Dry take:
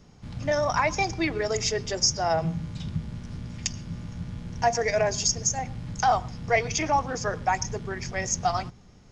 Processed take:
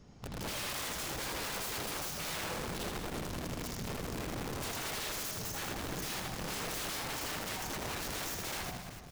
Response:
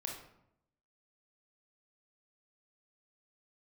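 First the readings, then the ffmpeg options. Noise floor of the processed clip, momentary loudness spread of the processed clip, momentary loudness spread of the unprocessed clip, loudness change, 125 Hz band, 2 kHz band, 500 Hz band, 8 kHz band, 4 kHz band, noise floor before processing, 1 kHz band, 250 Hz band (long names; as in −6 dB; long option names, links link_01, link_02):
−46 dBFS, 3 LU, 13 LU, −11.0 dB, −11.5 dB, −9.0 dB, −15.0 dB, −10.5 dB, −6.5 dB, −52 dBFS, −15.0 dB, −8.5 dB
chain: -filter_complex "[0:a]bandreject=frequency=89.08:width_type=h:width=4,bandreject=frequency=178.16:width_type=h:width=4,acompressor=threshold=-29dB:ratio=4,asplit=2[link_01][link_02];[link_02]highshelf=frequency=2000:gain=-10[link_03];[1:a]atrim=start_sample=2205[link_04];[link_03][link_04]afir=irnorm=-1:irlink=0,volume=-2dB[link_05];[link_01][link_05]amix=inputs=2:normalize=0,aeval=exprs='(mod(26.6*val(0)+1,2)-1)/26.6':channel_layout=same,asplit=2[link_06][link_07];[link_07]aecho=0:1:80|200|380|650|1055:0.631|0.398|0.251|0.158|0.1[link_08];[link_06][link_08]amix=inputs=2:normalize=0,volume=-7dB"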